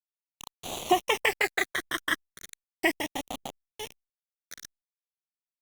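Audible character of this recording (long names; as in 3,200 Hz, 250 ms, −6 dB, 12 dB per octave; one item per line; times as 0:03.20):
a quantiser's noise floor 6 bits, dither none
phaser sweep stages 12, 0.36 Hz, lowest notch 790–1,700 Hz
Opus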